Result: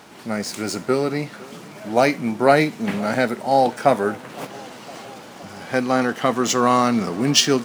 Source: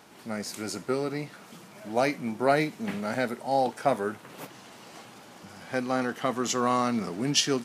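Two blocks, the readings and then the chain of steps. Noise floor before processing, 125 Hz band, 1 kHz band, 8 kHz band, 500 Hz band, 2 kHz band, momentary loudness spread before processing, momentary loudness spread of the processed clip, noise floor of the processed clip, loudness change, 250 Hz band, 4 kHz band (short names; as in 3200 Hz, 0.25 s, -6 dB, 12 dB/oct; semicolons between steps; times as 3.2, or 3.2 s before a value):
-50 dBFS, +8.5 dB, +8.5 dB, +7.5 dB, +8.5 dB, +8.5 dB, 22 LU, 20 LU, -40 dBFS, +8.5 dB, +8.5 dB, +8.0 dB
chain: median filter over 3 samples; on a send: tape echo 0.511 s, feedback 76%, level -21 dB; on the sum: gain +8.5 dB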